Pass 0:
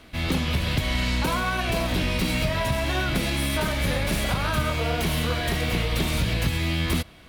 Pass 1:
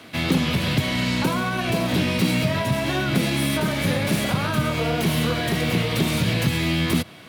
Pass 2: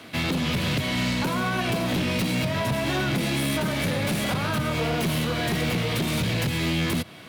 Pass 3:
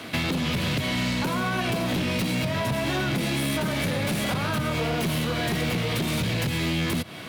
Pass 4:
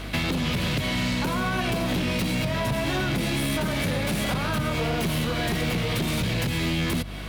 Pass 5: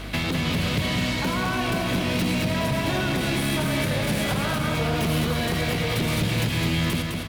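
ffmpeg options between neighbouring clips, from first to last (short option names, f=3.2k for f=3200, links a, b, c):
-filter_complex "[0:a]highpass=f=110:w=0.5412,highpass=f=110:w=1.3066,acrossover=split=410[a][b];[b]acompressor=threshold=-31dB:ratio=6[c];[a][c]amix=inputs=2:normalize=0,volume=6.5dB"
-af "alimiter=limit=-13dB:level=0:latency=1:release=216,volume=21dB,asoftclip=hard,volume=-21dB"
-af "acompressor=threshold=-30dB:ratio=6,volume=6dB"
-af "aeval=exprs='val(0)+0.0178*(sin(2*PI*50*n/s)+sin(2*PI*2*50*n/s)/2+sin(2*PI*3*50*n/s)/3+sin(2*PI*4*50*n/s)/4+sin(2*PI*5*50*n/s)/5)':c=same"
-af "aecho=1:1:209|418|627|836|1045|1254:0.562|0.276|0.135|0.0662|0.0324|0.0159"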